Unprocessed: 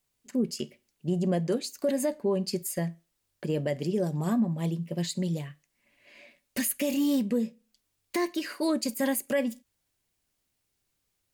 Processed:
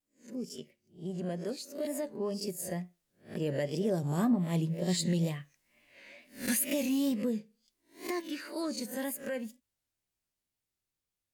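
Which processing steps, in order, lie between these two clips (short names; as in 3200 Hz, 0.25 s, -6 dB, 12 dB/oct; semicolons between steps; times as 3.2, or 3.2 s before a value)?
spectral swells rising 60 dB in 0.34 s; Doppler pass-by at 5.25, 8 m/s, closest 11 m; wow and flutter 85 cents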